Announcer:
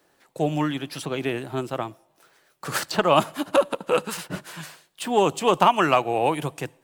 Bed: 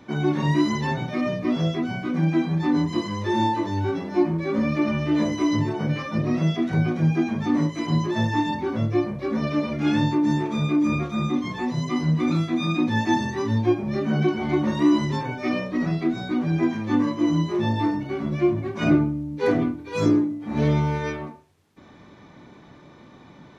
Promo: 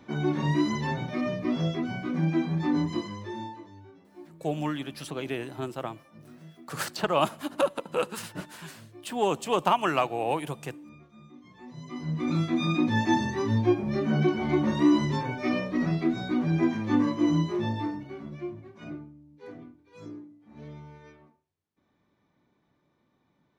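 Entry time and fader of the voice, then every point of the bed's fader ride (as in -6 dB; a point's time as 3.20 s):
4.05 s, -6.0 dB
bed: 2.92 s -4.5 dB
3.91 s -27 dB
11.33 s -27 dB
12.43 s -2.5 dB
17.36 s -2.5 dB
19.10 s -23.5 dB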